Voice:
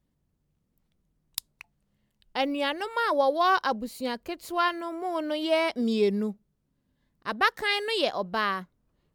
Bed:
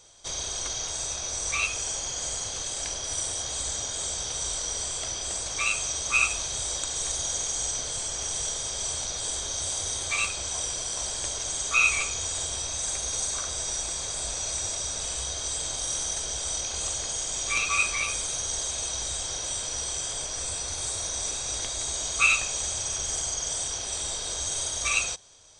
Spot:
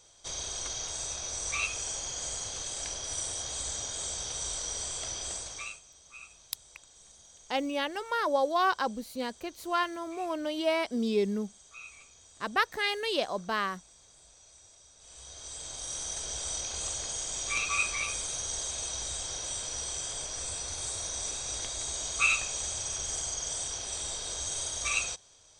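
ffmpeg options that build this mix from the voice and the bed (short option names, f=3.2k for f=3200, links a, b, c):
-filter_complex "[0:a]adelay=5150,volume=-3.5dB[a];[1:a]volume=17dB,afade=t=out:st=5.26:d=0.55:silence=0.0841395,afade=t=in:st=14.98:d=1.39:silence=0.0841395[b];[a][b]amix=inputs=2:normalize=0"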